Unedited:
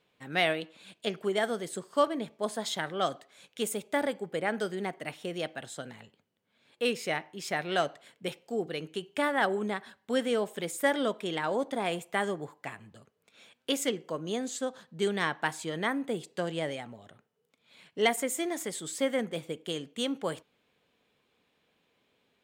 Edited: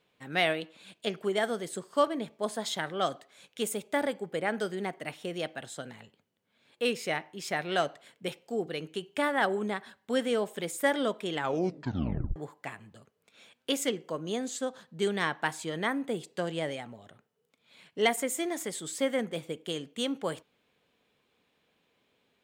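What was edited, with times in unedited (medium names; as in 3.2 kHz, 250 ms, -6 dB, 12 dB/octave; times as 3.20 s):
11.33 s: tape stop 1.03 s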